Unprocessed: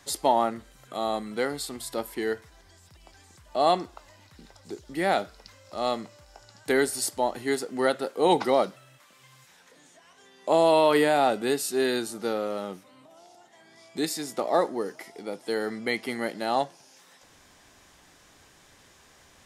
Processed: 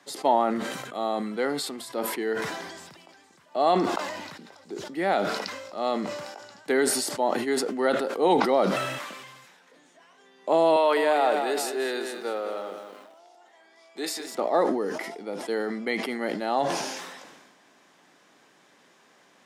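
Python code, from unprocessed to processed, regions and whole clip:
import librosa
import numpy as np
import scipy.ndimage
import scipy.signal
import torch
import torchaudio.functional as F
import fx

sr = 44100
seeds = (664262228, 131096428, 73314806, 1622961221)

y = fx.chain(x, sr, fx.highpass(hz=430.0, slope=12),
    fx.echo_crushed(ms=207, feedback_pct=35, bits=8, wet_db=-8.5), at=(10.76, 14.35))
y = scipy.signal.sosfilt(scipy.signal.butter(4, 180.0, 'highpass', fs=sr, output='sos'), y)
y = fx.high_shelf(y, sr, hz=4800.0, db=-11.0)
y = fx.sustainer(y, sr, db_per_s=38.0)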